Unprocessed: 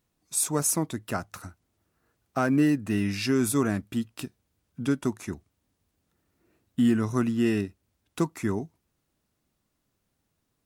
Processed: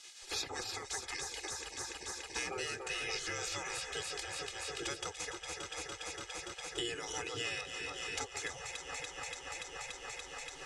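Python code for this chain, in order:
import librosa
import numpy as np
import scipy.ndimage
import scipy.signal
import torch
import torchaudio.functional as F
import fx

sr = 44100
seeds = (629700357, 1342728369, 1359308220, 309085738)

y = fx.echo_alternate(x, sr, ms=144, hz=1300.0, feedback_pct=84, wet_db=-9.0)
y = fx.spec_gate(y, sr, threshold_db=-20, keep='weak')
y = scipy.signal.sosfilt(scipy.signal.butter(4, 7500.0, 'lowpass', fs=sr, output='sos'), y)
y = fx.peak_eq(y, sr, hz=1100.0, db=-9.0, octaves=1.7)
y = y + 0.76 * np.pad(y, (int(2.4 * sr / 1000.0), 0))[:len(y)]
y = fx.band_squash(y, sr, depth_pct=100)
y = F.gain(torch.from_numpy(y), 3.5).numpy()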